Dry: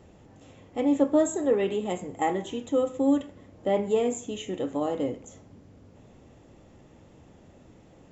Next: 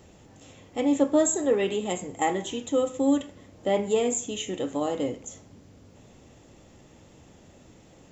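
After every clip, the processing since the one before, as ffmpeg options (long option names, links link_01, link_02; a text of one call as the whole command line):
ffmpeg -i in.wav -af "highshelf=frequency=2900:gain=10.5" out.wav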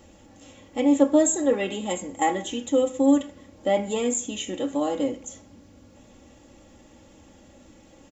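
ffmpeg -i in.wav -af "aecho=1:1:3.6:0.6" out.wav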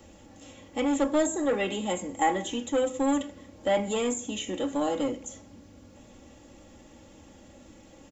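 ffmpeg -i in.wav -filter_complex "[0:a]acrossover=split=140|710|2100[link_01][link_02][link_03][link_04];[link_02]asoftclip=type=tanh:threshold=-25dB[link_05];[link_04]alimiter=level_in=2dB:limit=-24dB:level=0:latency=1:release=213,volume=-2dB[link_06];[link_01][link_05][link_03][link_06]amix=inputs=4:normalize=0" out.wav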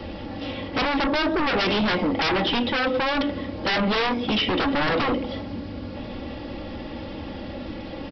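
ffmpeg -i in.wav -af "acompressor=threshold=-30dB:ratio=2,aresample=11025,aeval=exprs='0.112*sin(PI/2*5.01*val(0)/0.112)':channel_layout=same,aresample=44100" out.wav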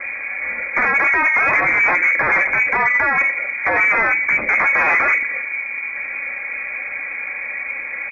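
ffmpeg -i in.wav -af "lowpass=frequency=2100:width_type=q:width=0.5098,lowpass=frequency=2100:width_type=q:width=0.6013,lowpass=frequency=2100:width_type=q:width=0.9,lowpass=frequency=2100:width_type=q:width=2.563,afreqshift=-2500,acontrast=63,volume=1dB" out.wav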